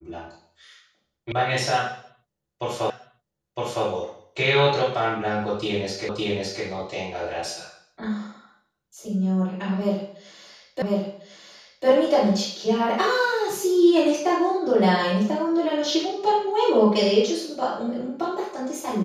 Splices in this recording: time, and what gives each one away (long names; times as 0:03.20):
0:01.32: cut off before it has died away
0:02.90: the same again, the last 0.96 s
0:06.09: the same again, the last 0.56 s
0:10.82: the same again, the last 1.05 s